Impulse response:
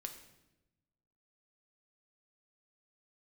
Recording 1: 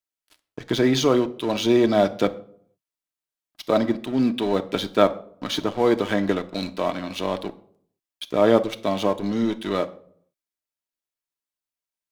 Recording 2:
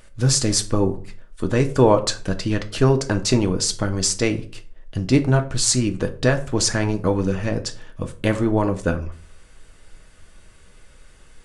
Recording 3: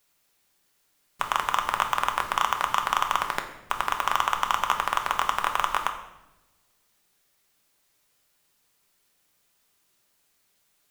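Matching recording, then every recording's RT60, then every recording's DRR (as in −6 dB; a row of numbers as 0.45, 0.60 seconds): 3; 0.60, 0.40, 0.95 seconds; 7.5, 5.5, 4.5 decibels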